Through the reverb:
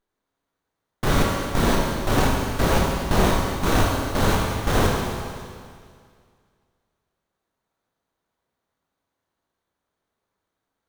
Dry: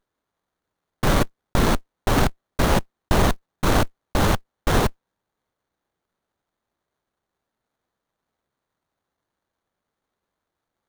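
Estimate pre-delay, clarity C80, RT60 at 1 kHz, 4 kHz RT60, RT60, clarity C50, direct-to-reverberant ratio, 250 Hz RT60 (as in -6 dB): 16 ms, 1.5 dB, 2.1 s, 2.1 s, 2.1 s, 0.0 dB, -2.5 dB, 2.1 s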